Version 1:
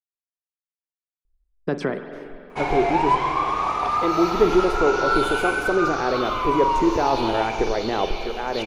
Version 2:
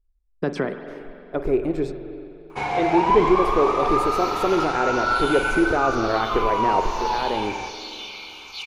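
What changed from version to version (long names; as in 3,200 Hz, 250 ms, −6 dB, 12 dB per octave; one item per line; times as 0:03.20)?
speech: entry −1.25 s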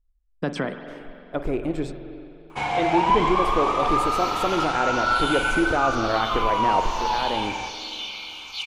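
master: add thirty-one-band graphic EQ 400 Hz −9 dB, 3,150 Hz +6 dB, 8,000 Hz +6 dB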